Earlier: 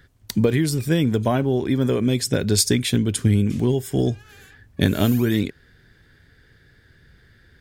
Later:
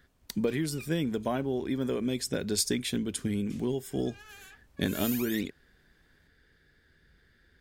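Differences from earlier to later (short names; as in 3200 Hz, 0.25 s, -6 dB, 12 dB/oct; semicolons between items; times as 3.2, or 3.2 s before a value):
speech -9.0 dB; master: add bell 110 Hz -13.5 dB 0.45 oct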